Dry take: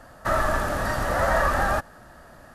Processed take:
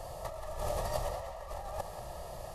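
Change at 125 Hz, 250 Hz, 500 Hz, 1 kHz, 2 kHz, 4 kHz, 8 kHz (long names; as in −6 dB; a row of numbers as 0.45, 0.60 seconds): −12.0, −19.0, −11.5, −15.5, −25.0, −10.0, −9.0 decibels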